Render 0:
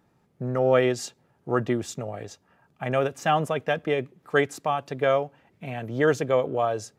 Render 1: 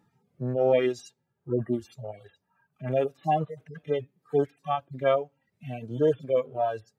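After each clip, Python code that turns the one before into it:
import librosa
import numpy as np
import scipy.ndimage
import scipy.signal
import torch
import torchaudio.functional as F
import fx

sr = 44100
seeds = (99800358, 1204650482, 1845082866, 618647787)

y = fx.hpss_only(x, sr, part='harmonic')
y = fx.dereverb_blind(y, sr, rt60_s=1.6)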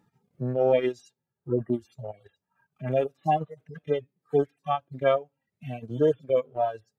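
y = fx.transient(x, sr, attack_db=2, sustain_db=-8)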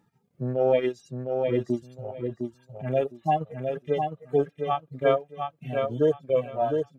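y = fx.echo_feedback(x, sr, ms=708, feedback_pct=19, wet_db=-5)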